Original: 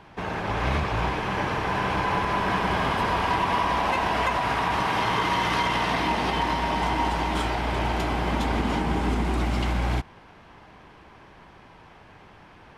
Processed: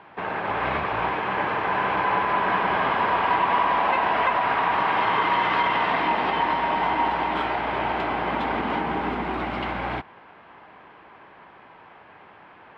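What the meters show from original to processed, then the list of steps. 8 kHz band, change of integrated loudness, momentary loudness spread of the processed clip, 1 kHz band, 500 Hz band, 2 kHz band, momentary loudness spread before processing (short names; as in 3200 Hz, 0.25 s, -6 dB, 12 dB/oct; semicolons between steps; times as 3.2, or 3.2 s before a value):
under -20 dB, +1.5 dB, 7 LU, +3.5 dB, +1.5 dB, +2.5 dB, 3 LU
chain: HPF 730 Hz 6 dB/oct; air absorption 460 m; gain +7.5 dB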